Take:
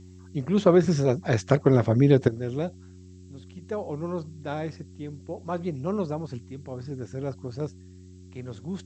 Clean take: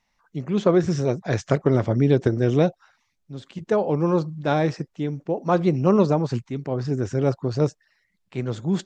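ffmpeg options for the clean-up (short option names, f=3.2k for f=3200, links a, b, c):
-af "bandreject=f=91.8:t=h:w=4,bandreject=f=183.6:t=h:w=4,bandreject=f=275.4:t=h:w=4,bandreject=f=367.2:t=h:w=4,agate=range=-21dB:threshold=-39dB,asetnsamples=n=441:p=0,asendcmd='2.28 volume volume 10.5dB',volume=0dB"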